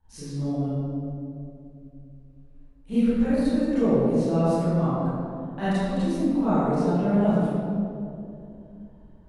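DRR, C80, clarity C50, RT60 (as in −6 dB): −16.0 dB, −3.0 dB, −6.5 dB, 2.7 s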